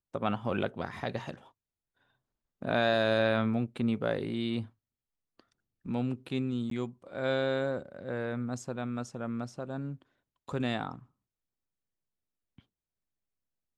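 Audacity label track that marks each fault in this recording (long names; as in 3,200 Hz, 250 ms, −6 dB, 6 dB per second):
6.700000	6.710000	drop-out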